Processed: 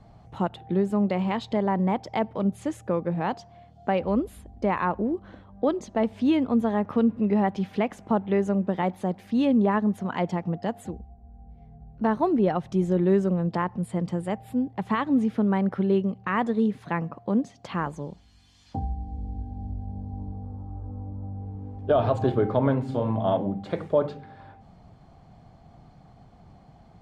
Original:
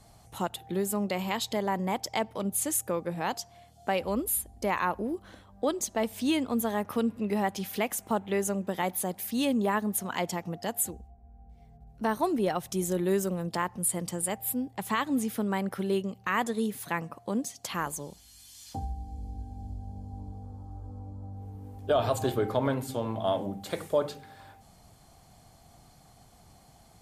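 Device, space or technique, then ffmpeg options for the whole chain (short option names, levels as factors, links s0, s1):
phone in a pocket: -filter_complex "[0:a]asettb=1/sr,asplit=3[s0][s1][s2];[s0]atrim=end=22.824[s3];[s1]atrim=start=22.82:end=23.37,asetpts=PTS-STARTPTS,afade=t=in:d=0.004:c=qsin,afade=t=out:st=0.546:d=0.004:c=qsin,asplit=2[s4][s5];[s5]adelay=37,volume=0.473[s6];[s4][s6]amix=inputs=2:normalize=0,atrim=end_sample=24255[s7];[s2]atrim=start=23.366[s8];[s3][s7]acrossfade=d=0.004:c1=hsin:c2=qsin[s9];[s9][s8]acrossfade=d=0.004:c1=qsin:c2=hsin,lowpass=4000,equalizer=f=170:t=o:w=1.2:g=4,highshelf=f=2100:g=-11,volume=1.68"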